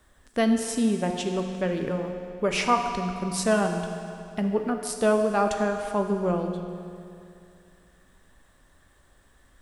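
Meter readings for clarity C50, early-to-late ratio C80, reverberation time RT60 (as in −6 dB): 5.5 dB, 6.5 dB, 2.6 s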